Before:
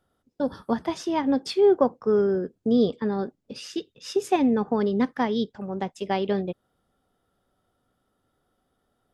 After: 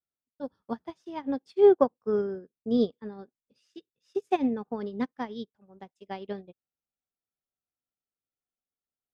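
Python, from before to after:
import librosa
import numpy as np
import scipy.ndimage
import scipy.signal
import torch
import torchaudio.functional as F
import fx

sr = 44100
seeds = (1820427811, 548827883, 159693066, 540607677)

y = fx.upward_expand(x, sr, threshold_db=-36.0, expansion=2.5)
y = F.gain(torch.from_numpy(y), 1.5).numpy()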